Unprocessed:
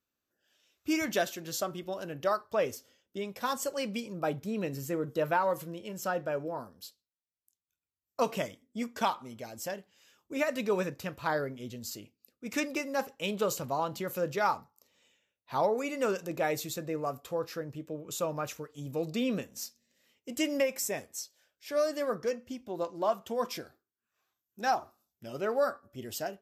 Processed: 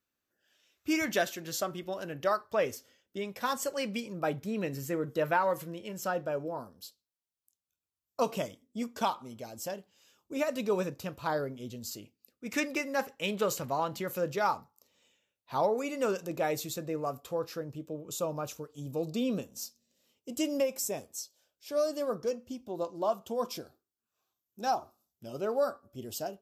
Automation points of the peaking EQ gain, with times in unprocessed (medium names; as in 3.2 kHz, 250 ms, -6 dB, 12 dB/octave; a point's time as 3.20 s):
peaking EQ 1.9 kHz 0.72 oct
5.91 s +3 dB
6.36 s -7 dB
11.69 s -7 dB
12.71 s +4 dB
13.86 s +4 dB
14.46 s -4 dB
17.46 s -4 dB
18.04 s -13 dB